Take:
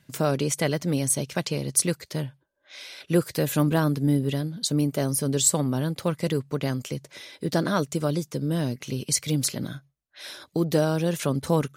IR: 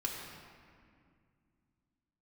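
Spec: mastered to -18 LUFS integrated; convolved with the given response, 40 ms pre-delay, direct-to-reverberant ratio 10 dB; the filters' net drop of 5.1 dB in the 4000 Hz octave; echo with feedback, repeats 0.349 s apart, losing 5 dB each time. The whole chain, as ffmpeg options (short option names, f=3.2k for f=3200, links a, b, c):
-filter_complex "[0:a]equalizer=f=4k:t=o:g=-6.5,aecho=1:1:349|698|1047|1396|1745|2094|2443:0.562|0.315|0.176|0.0988|0.0553|0.031|0.0173,asplit=2[a][b];[1:a]atrim=start_sample=2205,adelay=40[c];[b][c]afir=irnorm=-1:irlink=0,volume=-13dB[d];[a][d]amix=inputs=2:normalize=0,volume=6.5dB"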